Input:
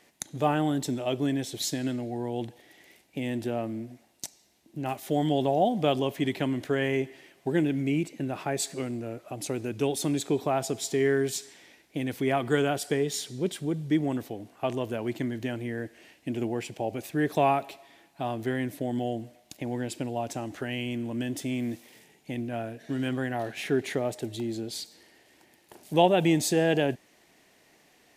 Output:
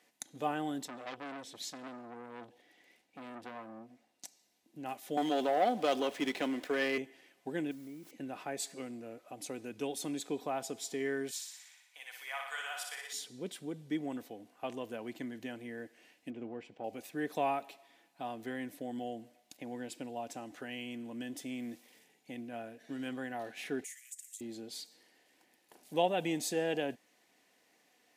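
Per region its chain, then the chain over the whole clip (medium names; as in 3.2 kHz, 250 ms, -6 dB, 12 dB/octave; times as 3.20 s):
0.85–4.25 s: treble shelf 7.9 kHz -10 dB + transformer saturation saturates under 1.9 kHz
5.17–6.98 s: high-pass 290 Hz + waveshaping leveller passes 2 + sliding maximum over 3 samples
7.71–8.11 s: Savitzky-Golay filter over 41 samples + word length cut 8-bit, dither triangular + compression 4:1, threshold -35 dBFS
11.31–13.13 s: high-pass 930 Hz 24 dB/octave + flutter echo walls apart 10.2 m, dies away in 0.87 s
16.30–16.84 s: partial rectifier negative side -3 dB + tape spacing loss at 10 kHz 23 dB
23.84–24.41 s: steep high-pass 1.8 kHz 72 dB/octave + resonant high shelf 5.5 kHz +11.5 dB, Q 3 + compression 4:1, threshold -35 dBFS
whole clip: high-pass 280 Hz 6 dB/octave; comb 4 ms, depth 32%; trim -8.5 dB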